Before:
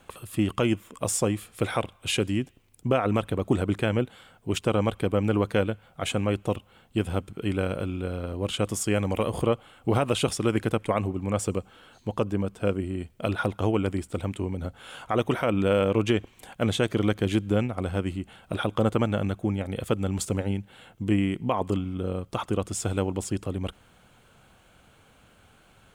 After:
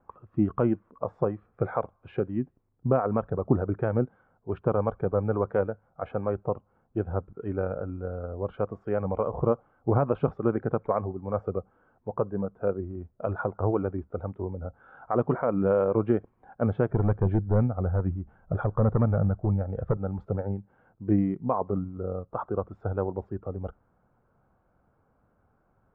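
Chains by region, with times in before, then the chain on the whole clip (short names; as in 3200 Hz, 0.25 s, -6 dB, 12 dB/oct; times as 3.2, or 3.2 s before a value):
16.89–19.97 hard clip -19.5 dBFS + low shelf 89 Hz +11 dB
whole clip: LPF 1300 Hz 24 dB/oct; spectral noise reduction 9 dB; dynamic EQ 160 Hz, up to +5 dB, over -44 dBFS, Q 2.1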